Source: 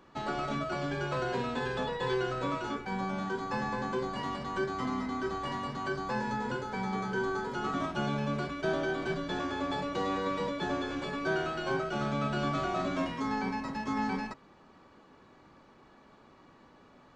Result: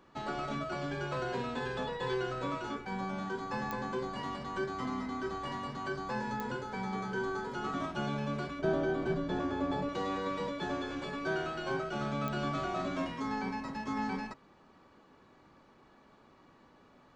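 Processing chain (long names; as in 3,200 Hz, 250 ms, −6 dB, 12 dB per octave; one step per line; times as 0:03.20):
0:08.59–0:09.89: tilt shelving filter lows +5.5 dB, about 1,100 Hz
digital clicks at 0:03.71/0:06.40/0:12.28, −19 dBFS
level −3 dB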